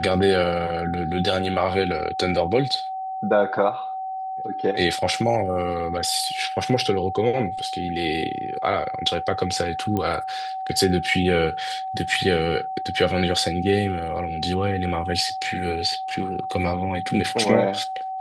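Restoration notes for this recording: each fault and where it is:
whine 760 Hz -27 dBFS
9.97 s: pop -13 dBFS

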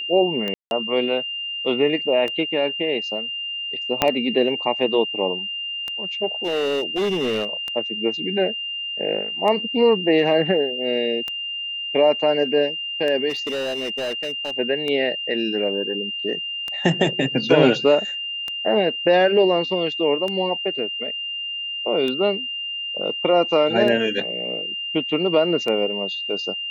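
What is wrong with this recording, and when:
tick 33 1/3 rpm -14 dBFS
whine 2.8 kHz -26 dBFS
0.54–0.71 s: dropout 171 ms
4.02 s: pop -2 dBFS
6.43–7.53 s: clipped -18.5 dBFS
13.29–14.51 s: clipped -22.5 dBFS

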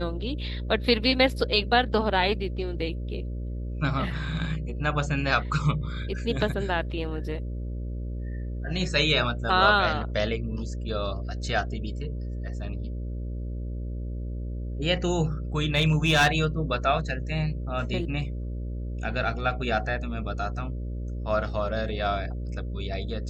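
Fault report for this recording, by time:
buzz 60 Hz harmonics 10 -32 dBFS
15.75–16.45 s: clipped -15 dBFS

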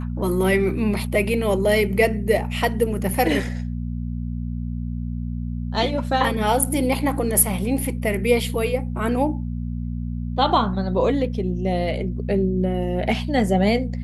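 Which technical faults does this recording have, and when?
hum 60 Hz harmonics 4 -27 dBFS

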